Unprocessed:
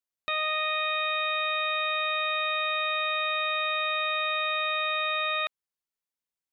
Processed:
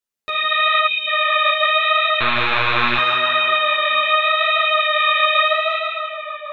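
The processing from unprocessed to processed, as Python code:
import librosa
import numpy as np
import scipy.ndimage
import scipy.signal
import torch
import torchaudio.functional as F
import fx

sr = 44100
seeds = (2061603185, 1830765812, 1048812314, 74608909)

y = fx.rev_schroeder(x, sr, rt60_s=2.4, comb_ms=30, drr_db=1.5)
y = fx.lpc_monotone(y, sr, seeds[0], pitch_hz=120.0, order=8, at=(2.2, 2.98))
y = fx.echo_tape(y, sr, ms=154, feedback_pct=83, wet_db=-5.0, lp_hz=2700.0, drive_db=3.0, wow_cents=38)
y = fx.spec_box(y, sr, start_s=0.86, length_s=0.21, low_hz=430.0, high_hz=2200.0, gain_db=-24)
y = fx.peak_eq(y, sr, hz=410.0, db=5.0, octaves=0.44)
y = fx.rider(y, sr, range_db=3, speed_s=2.0)
y = fx.air_absorb(y, sr, metres=100.0, at=(0.79, 1.35), fade=0.02)
y = fx.ensemble(y, sr)
y = y * 10.0 ** (5.0 / 20.0)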